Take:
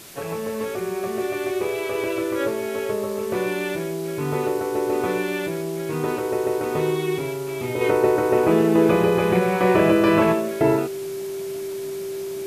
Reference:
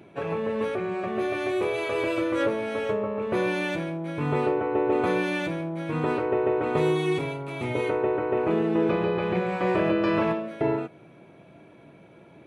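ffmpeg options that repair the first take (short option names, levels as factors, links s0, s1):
-af "bandreject=f=390:w=30,afwtdn=0.0079,asetnsamples=n=441:p=0,asendcmd='7.81 volume volume -6.5dB',volume=1"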